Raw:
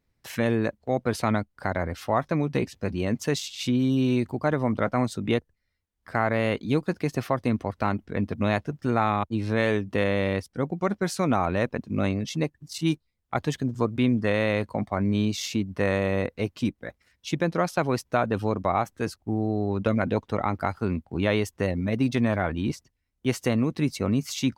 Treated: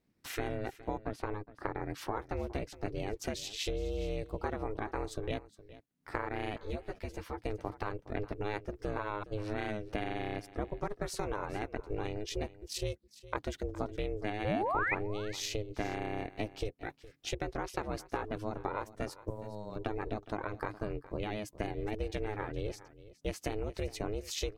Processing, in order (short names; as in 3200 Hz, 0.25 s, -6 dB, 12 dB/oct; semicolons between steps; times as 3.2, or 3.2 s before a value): compressor 10:1, threshold -29 dBFS, peak gain reduction 12 dB; 14.44–14.95 painted sound rise 280–2400 Hz -29 dBFS; 19.3–19.76 RIAA curve recording; ring modulator 210 Hz; 1.01–1.83 bell 9800 Hz -12 dB 2.8 oct; echo 0.415 s -17.5 dB; 6.58–7.39 ensemble effect